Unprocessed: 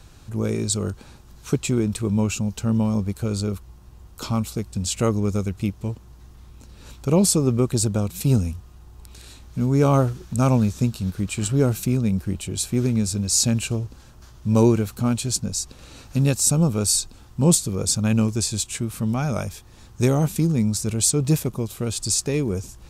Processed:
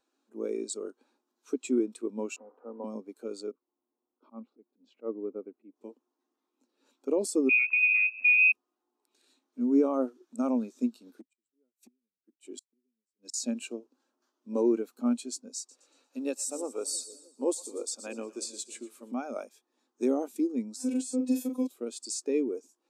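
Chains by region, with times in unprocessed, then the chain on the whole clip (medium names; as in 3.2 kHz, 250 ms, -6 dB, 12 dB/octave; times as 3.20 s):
2.36–2.84 s: one-bit delta coder 64 kbps, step -31.5 dBFS + Chebyshev band-pass 360–1100 Hz + comb 4.1 ms, depth 33%
3.51–5.76 s: slow attack 109 ms + tape spacing loss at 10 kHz 41 dB
7.49–8.52 s: bass shelf 140 Hz +10.5 dB + frequency inversion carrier 2.6 kHz
11.06–13.34 s: treble shelf 3.7 kHz +2 dB + inverted gate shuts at -16 dBFS, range -36 dB + hard clipper -19 dBFS
15.57–19.12 s: high-pass 320 Hz + two-band feedback delay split 590 Hz, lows 316 ms, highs 117 ms, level -12 dB
20.76–21.67 s: robot voice 255 Hz + doubling 42 ms -5.5 dB + three bands compressed up and down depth 100%
whole clip: elliptic high-pass 250 Hz, stop band 40 dB; peak limiter -14.5 dBFS; spectral contrast expander 1.5:1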